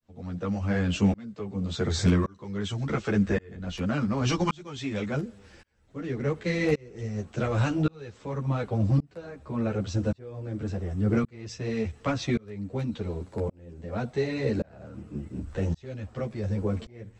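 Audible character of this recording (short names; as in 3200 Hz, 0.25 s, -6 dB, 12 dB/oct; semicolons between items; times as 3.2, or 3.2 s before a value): tremolo saw up 0.89 Hz, depth 100%; a shimmering, thickened sound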